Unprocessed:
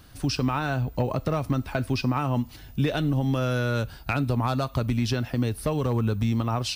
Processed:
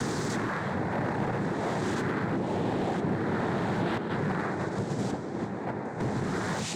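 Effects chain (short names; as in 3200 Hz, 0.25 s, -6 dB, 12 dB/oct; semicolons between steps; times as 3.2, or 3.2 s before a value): spectral swells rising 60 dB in 2.66 s; 3.97–6 gate -19 dBFS, range -17 dB; resonant high shelf 1600 Hz -6.5 dB, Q 1.5; compressor 12:1, threshold -25 dBFS, peak gain reduction 9 dB; noise vocoder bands 6; overloaded stage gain 25.5 dB; delay with a stepping band-pass 0.731 s, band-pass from 260 Hz, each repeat 0.7 oct, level -1.5 dB; reverb RT60 1.8 s, pre-delay 64 ms, DRR 12.5 dB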